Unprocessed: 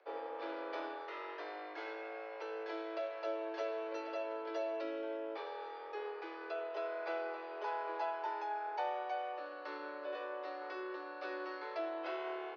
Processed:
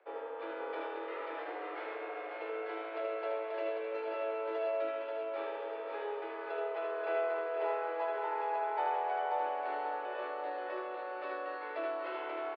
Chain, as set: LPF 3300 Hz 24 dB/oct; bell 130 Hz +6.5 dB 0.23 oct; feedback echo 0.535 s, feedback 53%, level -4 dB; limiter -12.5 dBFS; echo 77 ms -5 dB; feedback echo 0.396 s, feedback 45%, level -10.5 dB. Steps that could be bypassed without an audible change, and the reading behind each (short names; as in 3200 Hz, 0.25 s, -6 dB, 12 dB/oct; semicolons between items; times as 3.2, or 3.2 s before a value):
bell 130 Hz: input band starts at 270 Hz; limiter -12.5 dBFS: input peak -24.0 dBFS